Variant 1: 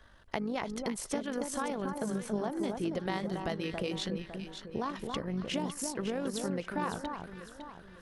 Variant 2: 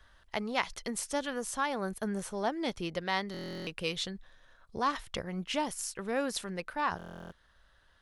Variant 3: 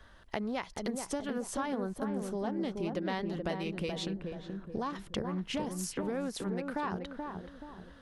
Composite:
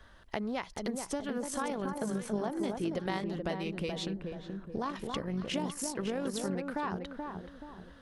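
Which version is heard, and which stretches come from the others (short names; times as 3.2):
3
1.43–3.24 from 1
4.82–6.55 from 1
not used: 2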